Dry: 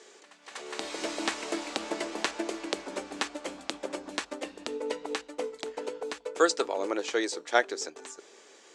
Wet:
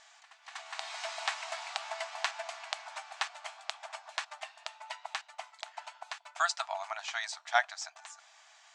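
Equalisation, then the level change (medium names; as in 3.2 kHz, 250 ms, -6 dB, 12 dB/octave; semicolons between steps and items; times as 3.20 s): brick-wall FIR high-pass 620 Hz; distance through air 54 m; -1.0 dB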